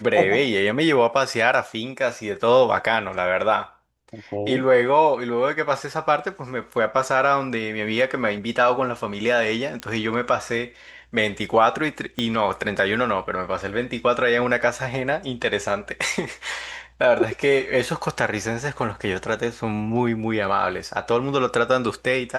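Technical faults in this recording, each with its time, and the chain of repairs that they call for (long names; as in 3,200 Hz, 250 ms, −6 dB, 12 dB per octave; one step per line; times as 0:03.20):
0:09.80: click −15 dBFS
0:12.19: click −13 dBFS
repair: click removal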